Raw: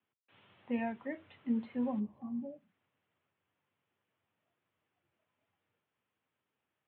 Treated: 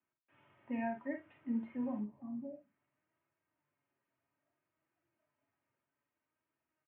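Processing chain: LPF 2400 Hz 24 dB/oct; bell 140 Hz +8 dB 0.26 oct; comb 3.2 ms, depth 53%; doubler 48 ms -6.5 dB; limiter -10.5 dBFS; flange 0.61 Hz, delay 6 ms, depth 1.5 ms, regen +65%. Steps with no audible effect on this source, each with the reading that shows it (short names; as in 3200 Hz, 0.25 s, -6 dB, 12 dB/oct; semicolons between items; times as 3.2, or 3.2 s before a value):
limiter -10.5 dBFS: input peak -22.0 dBFS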